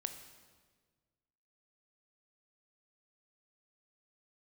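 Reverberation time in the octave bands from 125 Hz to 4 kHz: 2.0 s, 1.8 s, 1.7 s, 1.4 s, 1.3 s, 1.2 s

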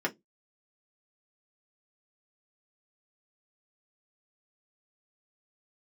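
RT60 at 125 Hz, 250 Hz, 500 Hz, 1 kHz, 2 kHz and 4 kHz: 0.30 s, 0.25 s, 0.20 s, 0.10 s, 0.10 s, 0.15 s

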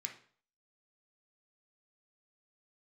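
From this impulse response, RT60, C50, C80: 0.50 s, 9.0 dB, 14.5 dB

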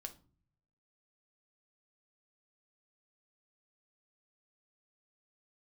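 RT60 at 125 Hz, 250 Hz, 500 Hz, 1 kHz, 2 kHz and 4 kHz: 1.0 s, 0.80 s, 0.50 s, 0.40 s, 0.30 s, 0.25 s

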